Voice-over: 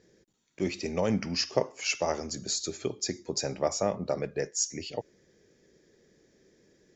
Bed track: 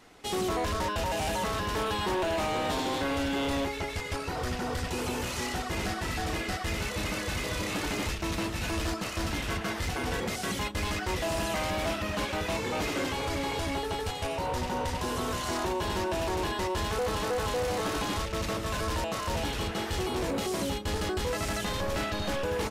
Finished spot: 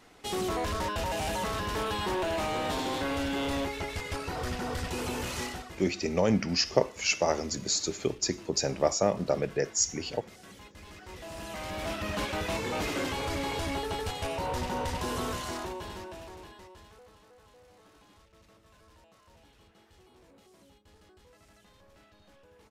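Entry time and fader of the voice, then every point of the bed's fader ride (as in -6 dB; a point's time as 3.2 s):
5.20 s, +2.5 dB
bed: 5.42 s -1.5 dB
5.88 s -18.5 dB
10.84 s -18.5 dB
12.1 s -1 dB
15.25 s -1 dB
17.24 s -28.5 dB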